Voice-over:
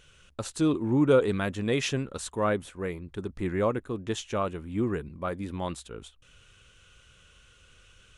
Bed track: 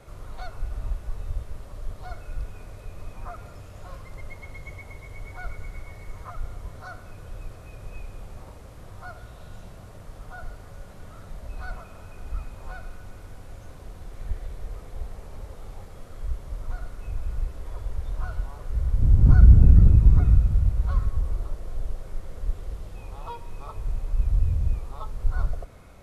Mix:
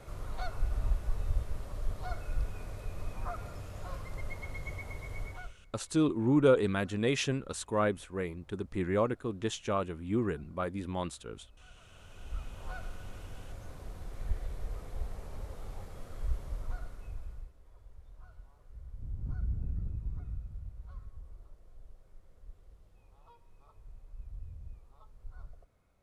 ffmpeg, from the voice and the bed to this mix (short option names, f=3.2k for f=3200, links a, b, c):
-filter_complex "[0:a]adelay=5350,volume=-2.5dB[a];[1:a]volume=19.5dB,afade=t=out:st=5.21:d=0.33:silence=0.0749894,afade=t=in:st=11.74:d=1.03:silence=0.1,afade=t=out:st=16.38:d=1.15:silence=0.105925[b];[a][b]amix=inputs=2:normalize=0"